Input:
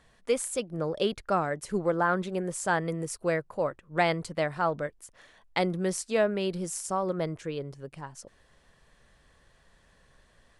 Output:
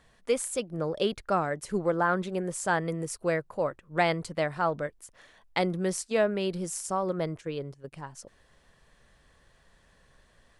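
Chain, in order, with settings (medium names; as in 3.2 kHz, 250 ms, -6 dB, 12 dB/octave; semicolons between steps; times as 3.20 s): 5.62–7.92 s: gate -40 dBFS, range -9 dB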